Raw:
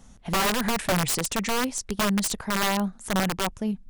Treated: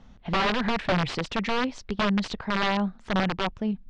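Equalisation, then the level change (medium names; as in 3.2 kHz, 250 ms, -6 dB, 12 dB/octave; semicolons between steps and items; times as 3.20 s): low-pass 4.2 kHz 24 dB/octave; 0.0 dB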